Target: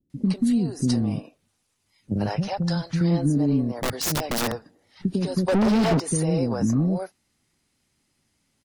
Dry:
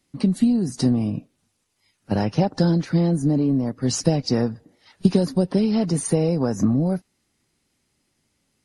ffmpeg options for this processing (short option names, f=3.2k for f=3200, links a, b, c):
-filter_complex "[0:a]asettb=1/sr,asplit=3[a][b][c];[a]atrim=end=2.264[d];[b]atrim=start=2.26:end=3.01,asetpts=PTS-STARTPTS,afade=t=in:d=0.004:c=qsin,afade=t=out:st=0.746:d=0.004:c=qsin,equalizer=f=310:t=o:w=1.2:g=-15[e];[c]atrim=start=3.006[f];[d][e]acrossfade=d=0.004:c1=hsin:c2=qsin[g];[g][f]acrossfade=d=0.004:c1=qsin:c2=hsin,alimiter=limit=-12.5dB:level=0:latency=1:release=139,acrossover=split=420[h][i];[i]adelay=100[j];[h][j]amix=inputs=2:normalize=0,asettb=1/sr,asplit=3[k][l][m];[k]atrim=end=3.724[n];[l]atrim=start=3.72:end=4.52,asetpts=PTS-STARTPTS,afade=t=in:d=0.004:c=qsin,afade=t=out:st=0.796:d=0.004:c=qsin,aeval=exprs='(mod(9.44*val(0)+1,2)-1)/9.44':c=same[o];[m]atrim=start=4.516[p];[n][o]acrossfade=d=0.004:c1=hsin:c2=qsin[q];[q][p]acrossfade=d=0.004:c1=qsin:c2=hsin,asettb=1/sr,asplit=3[r][s][t];[r]atrim=end=5.484[u];[s]atrim=start=5.48:end=6,asetpts=PTS-STARTPTS,afade=t=in:d=0.004:c=qsin,afade=t=out:st=0.516:d=0.004:c=qsin,asplit=2[v][w];[w]highpass=f=720:p=1,volume=33dB,asoftclip=type=tanh:threshold=-13dB[x];[v][x]amix=inputs=2:normalize=0,lowpass=f=1.5k:p=1,volume=-6dB[y];[t]atrim=start=5.996[z];[u][y]acrossfade=d=0.004:c1=hsin:c2=qsin[aa];[aa][z]acrossfade=d=0.004:c1=qsin:c2=hsin"